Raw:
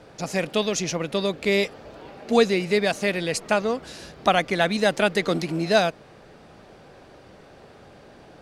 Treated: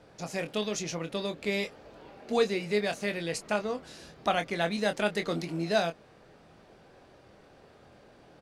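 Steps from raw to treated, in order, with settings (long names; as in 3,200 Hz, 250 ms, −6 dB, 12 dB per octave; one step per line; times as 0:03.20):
double-tracking delay 24 ms −8 dB
level −8.5 dB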